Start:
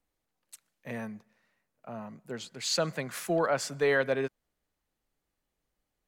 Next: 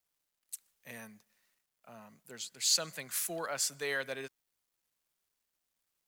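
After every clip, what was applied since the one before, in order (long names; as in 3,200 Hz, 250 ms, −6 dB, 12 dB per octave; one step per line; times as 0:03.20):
first-order pre-emphasis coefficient 0.9
log-companded quantiser 8 bits
level +6 dB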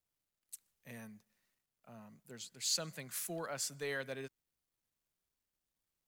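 low-shelf EQ 310 Hz +11.5 dB
level −6.5 dB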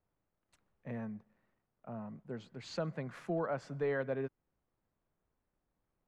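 low-pass filter 1,100 Hz 12 dB per octave
in parallel at +0.5 dB: downward compressor, threshold −51 dBFS, peak gain reduction 12.5 dB
on the sum: level +5.5 dB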